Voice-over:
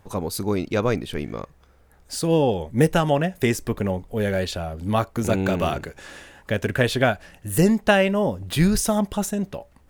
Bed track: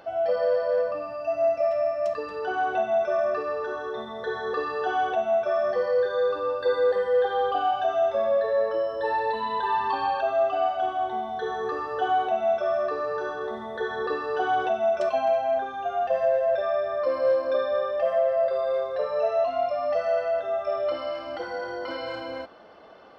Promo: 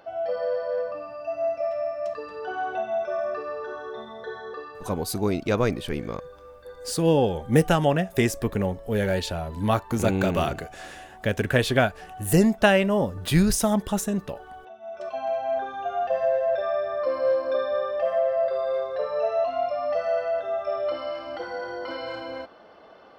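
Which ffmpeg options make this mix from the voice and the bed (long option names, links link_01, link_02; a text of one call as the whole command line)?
ffmpeg -i stem1.wav -i stem2.wav -filter_complex "[0:a]adelay=4750,volume=-1dB[link_01];[1:a]volume=15.5dB,afade=type=out:start_time=4.09:duration=0.88:silence=0.158489,afade=type=in:start_time=14.81:duration=0.84:silence=0.112202[link_02];[link_01][link_02]amix=inputs=2:normalize=0" out.wav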